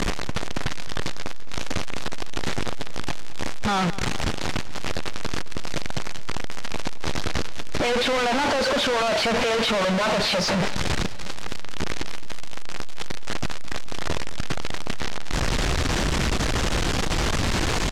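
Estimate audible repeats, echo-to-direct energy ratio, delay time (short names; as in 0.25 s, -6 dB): 4, -15.0 dB, 0.214 s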